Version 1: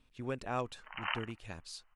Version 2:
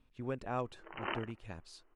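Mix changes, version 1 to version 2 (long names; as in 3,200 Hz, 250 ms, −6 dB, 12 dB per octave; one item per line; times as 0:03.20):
background: remove high-pass filter 780 Hz 24 dB per octave
master: add high-shelf EQ 2,300 Hz −9.5 dB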